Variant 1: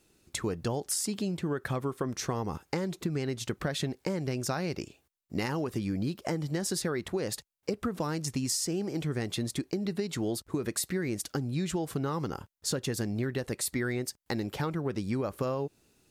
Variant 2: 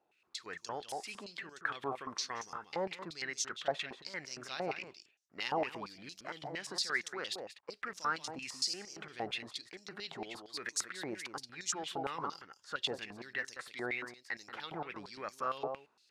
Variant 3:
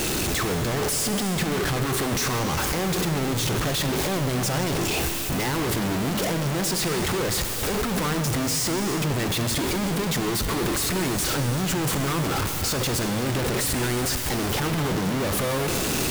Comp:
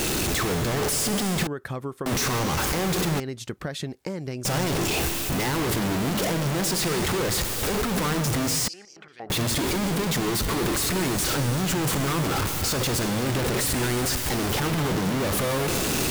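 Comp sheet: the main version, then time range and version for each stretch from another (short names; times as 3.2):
3
1.47–2.06 from 1
3.2–4.45 from 1
8.68–9.3 from 2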